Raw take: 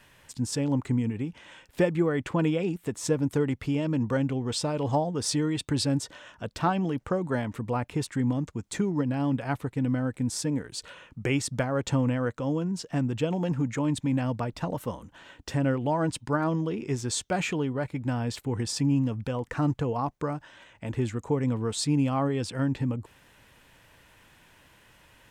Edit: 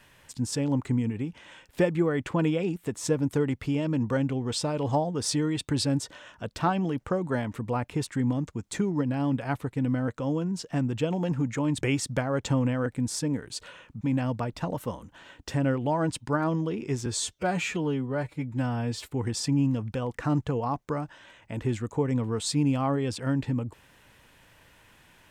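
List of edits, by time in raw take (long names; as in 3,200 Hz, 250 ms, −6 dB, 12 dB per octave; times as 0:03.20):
0:10.08–0:11.23: swap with 0:12.28–0:14.01
0:17.06–0:18.41: time-stretch 1.5×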